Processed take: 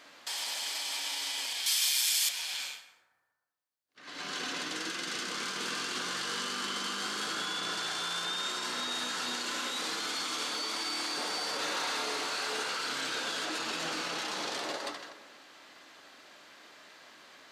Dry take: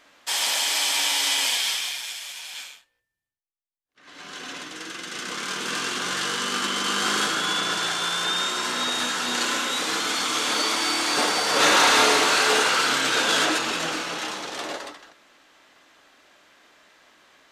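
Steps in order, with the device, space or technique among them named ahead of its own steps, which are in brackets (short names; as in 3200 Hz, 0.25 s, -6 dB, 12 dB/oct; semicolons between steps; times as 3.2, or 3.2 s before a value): broadcast voice chain (HPF 100 Hz; de-esser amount 35%; compressor, threshold -32 dBFS, peak gain reduction 16 dB; bell 4500 Hz +5 dB 0.33 oct; limiter -27 dBFS, peak gain reduction 8 dB); 1.66–2.29 RIAA curve recording; plate-style reverb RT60 1.4 s, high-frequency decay 0.35×, pre-delay 0.115 s, DRR 13.5 dB; gain +1 dB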